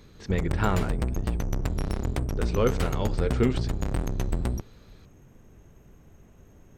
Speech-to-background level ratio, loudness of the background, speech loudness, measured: 1.5 dB, -30.5 LUFS, -29.0 LUFS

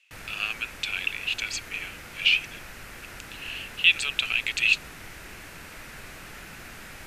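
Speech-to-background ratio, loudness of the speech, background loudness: 17.0 dB, -25.0 LUFS, -42.0 LUFS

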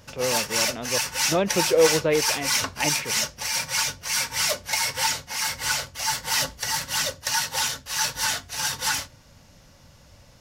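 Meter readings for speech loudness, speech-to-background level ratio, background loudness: -26.0 LUFS, -2.0 dB, -24.0 LUFS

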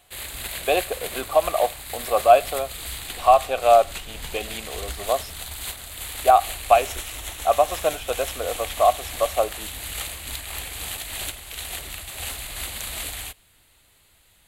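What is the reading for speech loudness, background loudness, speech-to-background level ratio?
-22.0 LUFS, -32.0 LUFS, 10.0 dB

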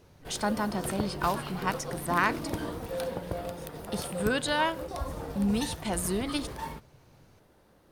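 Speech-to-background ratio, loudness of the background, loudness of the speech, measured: 6.5 dB, -37.5 LUFS, -31.0 LUFS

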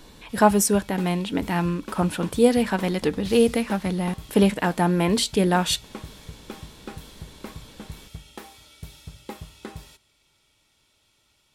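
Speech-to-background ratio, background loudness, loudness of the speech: 19.5 dB, -42.0 LUFS, -22.5 LUFS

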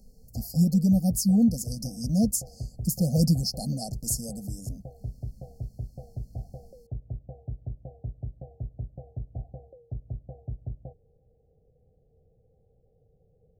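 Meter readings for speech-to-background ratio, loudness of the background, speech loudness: 15.0 dB, -40.5 LUFS, -25.5 LUFS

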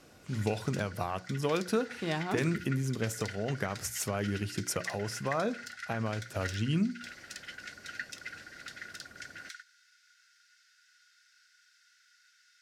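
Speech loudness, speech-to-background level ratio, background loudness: -33.5 LUFS, 10.5 dB, -44.0 LUFS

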